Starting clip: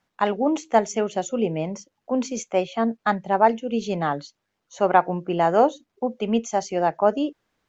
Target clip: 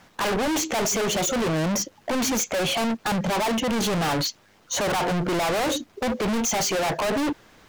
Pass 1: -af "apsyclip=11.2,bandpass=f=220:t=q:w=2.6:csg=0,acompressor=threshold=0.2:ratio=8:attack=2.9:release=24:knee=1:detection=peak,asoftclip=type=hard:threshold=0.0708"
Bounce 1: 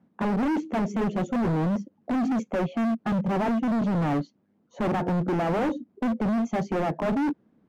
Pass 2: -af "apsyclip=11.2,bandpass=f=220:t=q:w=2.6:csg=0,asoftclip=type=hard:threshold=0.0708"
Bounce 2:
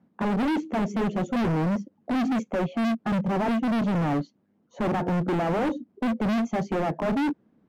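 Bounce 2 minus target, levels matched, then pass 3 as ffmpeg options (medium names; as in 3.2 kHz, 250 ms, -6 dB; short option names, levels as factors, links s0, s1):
250 Hz band +4.5 dB
-af "apsyclip=11.2,asoftclip=type=hard:threshold=0.0708"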